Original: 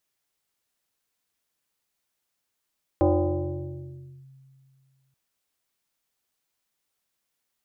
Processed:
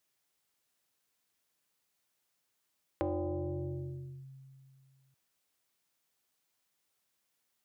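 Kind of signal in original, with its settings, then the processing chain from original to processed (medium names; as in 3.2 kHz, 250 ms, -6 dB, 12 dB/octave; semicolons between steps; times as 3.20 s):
FM tone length 2.13 s, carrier 134 Hz, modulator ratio 1.65, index 2.7, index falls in 1.25 s linear, decay 2.42 s, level -15.5 dB
compression 4:1, threshold -35 dBFS; high-pass 70 Hz; de-hum 230.1 Hz, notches 20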